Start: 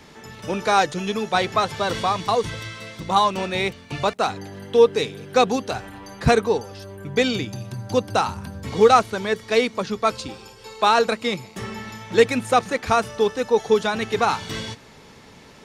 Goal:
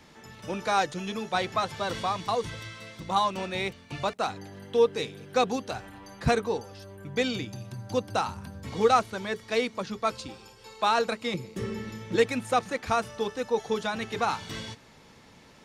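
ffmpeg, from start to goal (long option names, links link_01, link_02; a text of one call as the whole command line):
ffmpeg -i in.wav -filter_complex "[0:a]asettb=1/sr,asplit=3[link_01][link_02][link_03];[link_01]atrim=end=11.344[link_04];[link_02]atrim=start=11.34:end=12.16,asetpts=PTS-STARTPTS,afade=type=in:duration=0.004:curve=qsin,afade=type=out:start_time=0.816:duration=0.004:curve=qsin,lowshelf=frequency=570:width_type=q:width=3:gain=6[link_05];[link_03]atrim=start=12.156[link_06];[link_04][link_05]acrossfade=duration=0.004:curve1=hsin:curve2=qsin[link_07];[link_07][link_06]acrossfade=duration=0.004:curve1=qsin:curve2=hsin,bandreject=frequency=420:width=13,volume=-7dB" out.wav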